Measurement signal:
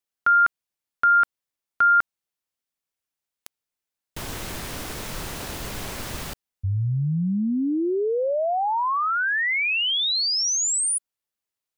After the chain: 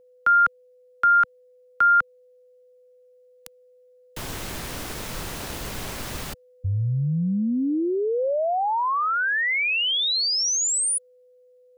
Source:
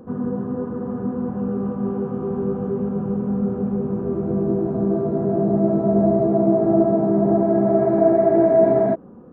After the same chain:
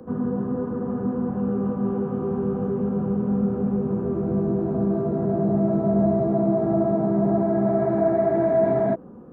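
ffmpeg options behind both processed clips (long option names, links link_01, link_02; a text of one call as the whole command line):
ffmpeg -i in.wav -filter_complex "[0:a]acrossover=split=130|220|730[link_01][link_02][link_03][link_04];[link_03]alimiter=limit=-22.5dB:level=0:latency=1[link_05];[link_01][link_02][link_05][link_04]amix=inputs=4:normalize=0,aeval=exprs='val(0)+0.00224*sin(2*PI*500*n/s)':channel_layout=same" out.wav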